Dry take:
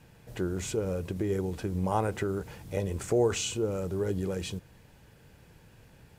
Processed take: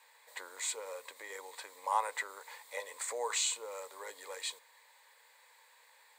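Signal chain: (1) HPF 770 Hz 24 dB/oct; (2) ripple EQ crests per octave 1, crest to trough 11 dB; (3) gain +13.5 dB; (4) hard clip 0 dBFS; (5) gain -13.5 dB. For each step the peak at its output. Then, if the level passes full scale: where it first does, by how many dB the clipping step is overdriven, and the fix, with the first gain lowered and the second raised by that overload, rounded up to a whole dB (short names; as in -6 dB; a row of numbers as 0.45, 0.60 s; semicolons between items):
-18.0, -16.5, -3.0, -3.0, -16.5 dBFS; no overload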